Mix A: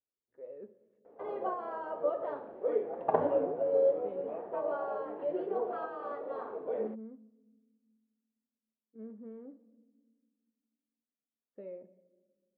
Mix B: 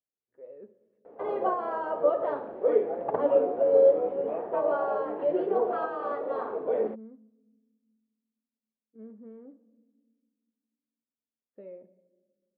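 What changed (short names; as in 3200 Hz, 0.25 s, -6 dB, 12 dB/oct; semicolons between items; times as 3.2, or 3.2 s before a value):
first sound +7.5 dB; second sound: send off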